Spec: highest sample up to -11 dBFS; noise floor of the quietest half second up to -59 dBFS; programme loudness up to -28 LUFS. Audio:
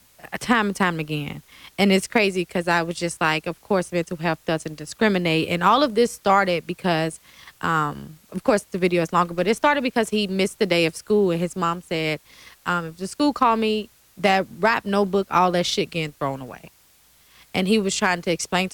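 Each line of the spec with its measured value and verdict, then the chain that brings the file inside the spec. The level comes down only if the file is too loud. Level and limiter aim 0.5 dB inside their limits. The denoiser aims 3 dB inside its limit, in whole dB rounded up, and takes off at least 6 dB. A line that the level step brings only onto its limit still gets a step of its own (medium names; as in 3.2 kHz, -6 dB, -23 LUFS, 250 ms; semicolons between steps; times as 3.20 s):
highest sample -4.5 dBFS: fail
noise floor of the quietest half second -56 dBFS: fail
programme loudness -22.0 LUFS: fail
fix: trim -6.5 dB; peak limiter -11.5 dBFS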